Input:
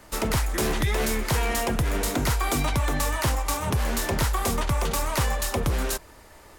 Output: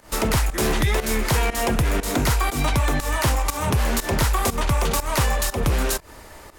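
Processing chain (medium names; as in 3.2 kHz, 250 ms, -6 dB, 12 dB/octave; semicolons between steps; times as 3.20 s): rattle on loud lows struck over -24 dBFS, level -32 dBFS; in parallel at +2 dB: peak limiter -23.5 dBFS, peak gain reduction 8 dB; on the sum: volume shaper 120 bpm, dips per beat 1, -16 dB, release 164 ms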